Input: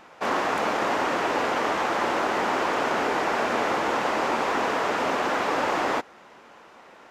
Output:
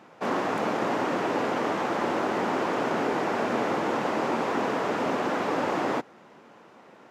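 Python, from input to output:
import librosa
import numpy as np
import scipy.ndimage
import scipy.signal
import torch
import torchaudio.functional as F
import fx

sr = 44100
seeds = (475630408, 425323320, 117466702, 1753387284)

y = scipy.signal.sosfilt(scipy.signal.butter(4, 110.0, 'highpass', fs=sr, output='sos'), x)
y = fx.low_shelf(y, sr, hz=440.0, db=12.0)
y = y * librosa.db_to_amplitude(-6.0)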